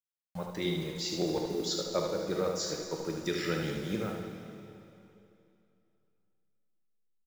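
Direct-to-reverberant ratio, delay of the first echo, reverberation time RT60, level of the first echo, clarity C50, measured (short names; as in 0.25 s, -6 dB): 1.0 dB, 75 ms, 2.8 s, -6.0 dB, 2.0 dB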